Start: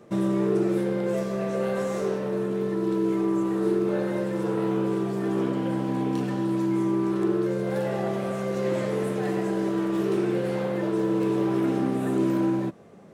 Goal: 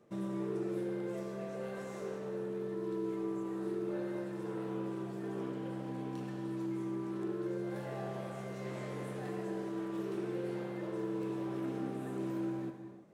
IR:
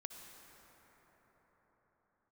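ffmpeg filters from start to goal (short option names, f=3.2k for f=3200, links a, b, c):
-filter_complex "[0:a]asettb=1/sr,asplit=3[a][b][c];[a]atrim=end=7.724[d];[b]atrim=start=7.72:end=9.29,asetpts=PTS-STARTPTS,afade=t=in:d=0.004:c=qsin,afade=t=out:st=1.566:d=0.004:c=qsin,asplit=2[e][f];[f]adelay=24,volume=-5dB[g];[e][g]amix=inputs=2:normalize=0,atrim=end_sample=69237[h];[c]atrim=start=9.286[i];[d][h]acrossfade=d=0.004:c1=hsin:c2=qsin[j];[j][i]acrossfade=d=0.004:c1=qsin:c2=hsin[k];[1:a]atrim=start_sample=2205,afade=t=out:st=0.4:d=0.01,atrim=end_sample=18081[l];[k][l]afir=irnorm=-1:irlink=0,volume=-8.5dB"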